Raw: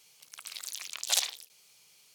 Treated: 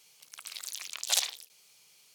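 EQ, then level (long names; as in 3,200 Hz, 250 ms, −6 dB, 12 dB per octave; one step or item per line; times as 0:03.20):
low-shelf EQ 87 Hz −5.5 dB
0.0 dB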